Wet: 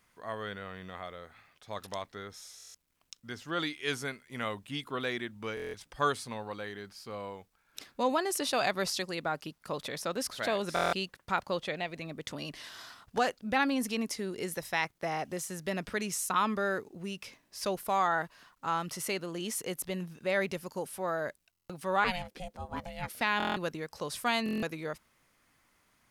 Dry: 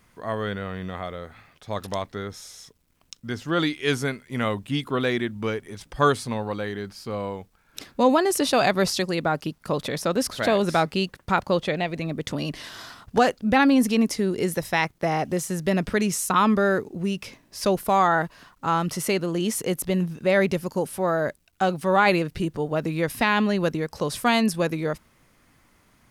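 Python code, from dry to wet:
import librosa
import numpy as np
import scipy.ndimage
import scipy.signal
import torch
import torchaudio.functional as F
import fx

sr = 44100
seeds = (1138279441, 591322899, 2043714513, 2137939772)

y = fx.low_shelf(x, sr, hz=490.0, db=-8.5)
y = fx.ring_mod(y, sr, carrier_hz=360.0, at=(22.04, 23.21))
y = fx.buffer_glitch(y, sr, at_s=(2.56, 5.55, 10.74, 21.51, 23.38, 24.44), block=1024, repeats=7)
y = F.gain(torch.from_numpy(y), -6.5).numpy()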